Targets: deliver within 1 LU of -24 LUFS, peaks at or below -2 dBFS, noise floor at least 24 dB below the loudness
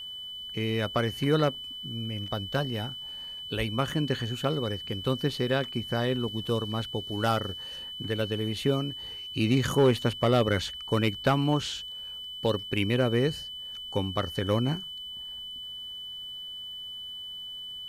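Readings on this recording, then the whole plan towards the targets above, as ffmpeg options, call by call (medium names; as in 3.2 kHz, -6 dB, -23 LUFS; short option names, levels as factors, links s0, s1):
steady tone 3 kHz; tone level -37 dBFS; loudness -29.5 LUFS; peak level -14.5 dBFS; loudness target -24.0 LUFS
-> -af "bandreject=f=3000:w=30"
-af "volume=1.88"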